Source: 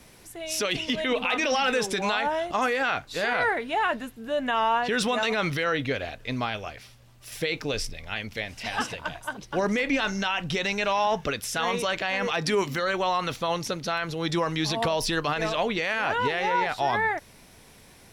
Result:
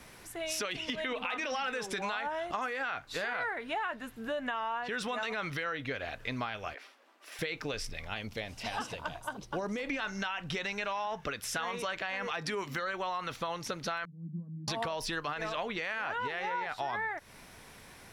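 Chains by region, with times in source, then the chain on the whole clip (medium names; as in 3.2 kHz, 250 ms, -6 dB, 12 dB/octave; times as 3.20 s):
6.74–7.39 s: elliptic high-pass 280 Hz, stop band 60 dB + treble shelf 4.3 kHz -11 dB
8.07–9.89 s: peaking EQ 1.8 kHz -9.5 dB 1.2 oct + tape noise reduction on one side only decoder only
14.05–14.68 s: Butterworth band-pass 190 Hz, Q 3.8 + upward compressor, threshold -41 dBFS
whole clip: peaking EQ 1.4 kHz +6.5 dB 1.7 oct; compression 6:1, threshold -30 dBFS; trim -2.5 dB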